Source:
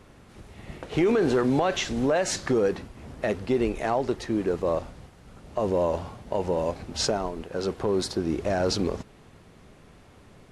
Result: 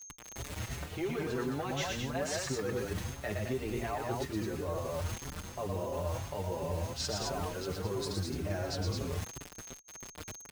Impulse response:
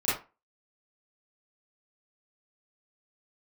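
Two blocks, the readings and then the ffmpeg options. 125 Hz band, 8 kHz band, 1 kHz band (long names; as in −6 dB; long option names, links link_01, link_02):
−2.0 dB, −4.0 dB, −8.0 dB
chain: -filter_complex "[0:a]equalizer=frequency=86:width_type=o:width=1.1:gain=13.5,aecho=1:1:116.6|215.7:0.631|0.562,acrossover=split=800[link_01][link_02];[link_01]adynamicequalizer=threshold=0.0112:dfrequency=140:dqfactor=4:tfrequency=140:tqfactor=4:attack=5:release=100:ratio=0.375:range=2:mode=boostabove:tftype=bell[link_03];[link_02]acontrast=55[link_04];[link_03][link_04]amix=inputs=2:normalize=0,acrusher=bits=5:mix=0:aa=0.000001,aeval=exprs='val(0)+0.00501*sin(2*PI*6400*n/s)':channel_layout=same,areverse,acompressor=threshold=-30dB:ratio=6,areverse,asplit=2[link_05][link_06];[link_06]adelay=5.7,afreqshift=2.9[link_07];[link_05][link_07]amix=inputs=2:normalize=1"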